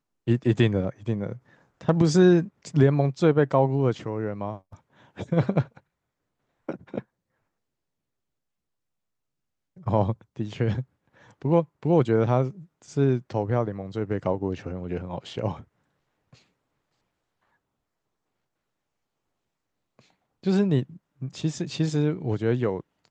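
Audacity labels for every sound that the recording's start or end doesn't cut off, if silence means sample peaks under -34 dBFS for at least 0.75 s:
6.690000	7.000000	sound
9.870000	15.610000	sound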